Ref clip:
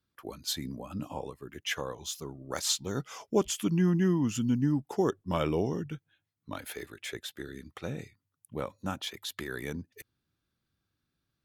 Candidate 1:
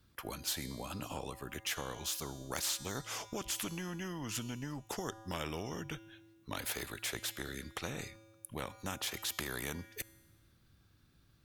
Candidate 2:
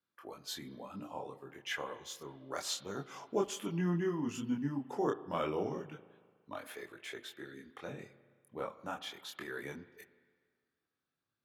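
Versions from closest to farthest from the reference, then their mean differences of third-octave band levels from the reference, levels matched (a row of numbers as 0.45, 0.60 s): 2, 1; 5.5, 13.0 dB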